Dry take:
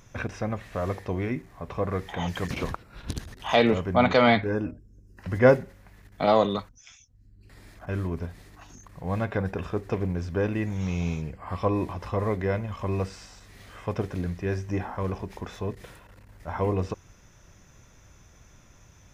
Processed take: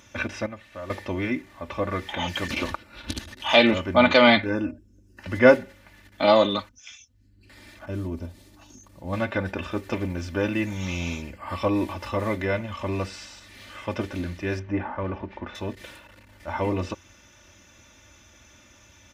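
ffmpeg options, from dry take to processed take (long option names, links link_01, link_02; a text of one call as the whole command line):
ffmpeg -i in.wav -filter_complex "[0:a]asettb=1/sr,asplit=3[link_01][link_02][link_03];[link_01]atrim=end=7.884[link_04];[link_02]atrim=start=7.88:end=9.13,asetpts=PTS-STARTPTS,afade=type=in:duration=0.004:curve=qsin,afade=type=out:start_time=1.246:duration=0.004:curve=qsin,equalizer=frequency=1900:width_type=o:width=2.1:gain=-12.5[link_05];[link_03]atrim=start=9.126[link_06];[link_04][link_05]acrossfade=duration=0.004:curve1=hsin:curve2=qsin[link_07];[link_07][link_06]acrossfade=duration=0.004:curve1=qsin:curve2=hsin,asettb=1/sr,asplit=3[link_08][link_09][link_10];[link_08]atrim=end=9.714[link_11];[link_09]atrim=start=9.71:end=12.45,asetpts=PTS-STARTPTS,afade=type=in:duration=0.004:curve=qsin,afade=type=out:start_time=2.736:duration=0.004:curve=qsin,highshelf=frequency=8200:gain=8[link_12];[link_10]atrim=start=12.446[link_13];[link_11][link_12]acrossfade=duration=0.004:curve1=hsin:curve2=qsin[link_14];[link_14][link_13]acrossfade=duration=0.004:curve1=qsin:curve2=hsin,asettb=1/sr,asplit=3[link_15][link_16][link_17];[link_15]atrim=end=14.594[link_18];[link_16]atrim=start=14.59:end=15.55,asetpts=PTS-STARTPTS,afade=type=in:duration=0.004:curve=qsin,afade=type=out:start_time=0.956:duration=0.004:curve=qsin,lowpass=2000[link_19];[link_17]atrim=start=15.546[link_20];[link_18][link_19]acrossfade=duration=0.004:curve1=hsin:curve2=qsin[link_21];[link_21][link_20]acrossfade=duration=0.004:curve1=qsin:curve2=hsin,asplit=3[link_22][link_23][link_24];[link_22]atrim=end=0.462[link_25];[link_23]atrim=start=0.458:end=0.902,asetpts=PTS-STARTPTS,volume=-10dB[link_26];[link_24]atrim=start=0.898[link_27];[link_25][link_26]acrossfade=duration=0.004:curve1=hsin:curve2=hsin[link_28];[link_28][link_27]acrossfade=duration=0.004:curve1=hsin:curve2=hsin,highpass=77,equalizer=frequency=3000:width=0.89:gain=7.5,aecho=1:1:3.4:0.75" out.wav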